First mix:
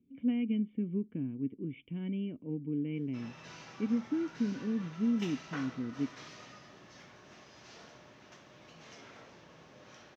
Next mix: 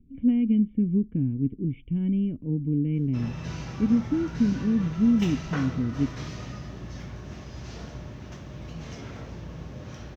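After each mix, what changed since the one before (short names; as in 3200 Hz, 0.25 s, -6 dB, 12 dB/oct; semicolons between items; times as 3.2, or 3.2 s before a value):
background +7.5 dB; master: remove weighting filter A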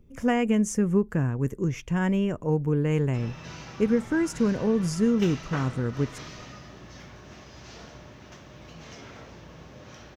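speech: remove vocal tract filter i; master: add low shelf 280 Hz -11.5 dB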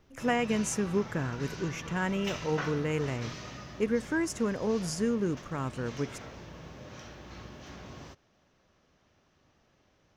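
speech: add low shelf 330 Hz -11 dB; background: entry -2.95 s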